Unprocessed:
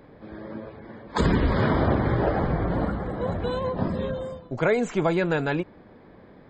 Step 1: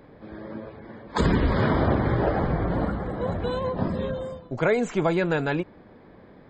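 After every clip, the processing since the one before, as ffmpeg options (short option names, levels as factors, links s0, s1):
-af anull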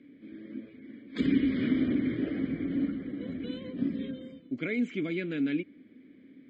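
-filter_complex "[0:a]asplit=3[s0][s1][s2];[s0]bandpass=f=270:t=q:w=8,volume=1[s3];[s1]bandpass=f=2290:t=q:w=8,volume=0.501[s4];[s2]bandpass=f=3010:t=q:w=8,volume=0.355[s5];[s3][s4][s5]amix=inputs=3:normalize=0,volume=2"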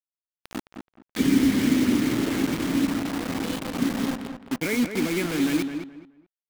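-filter_complex "[0:a]acrusher=bits=5:mix=0:aa=0.000001,asplit=2[s0][s1];[s1]adelay=213,lowpass=f=2300:p=1,volume=0.447,asplit=2[s2][s3];[s3]adelay=213,lowpass=f=2300:p=1,volume=0.25,asplit=2[s4][s5];[s5]adelay=213,lowpass=f=2300:p=1,volume=0.25[s6];[s2][s4][s6]amix=inputs=3:normalize=0[s7];[s0][s7]amix=inputs=2:normalize=0,volume=1.88"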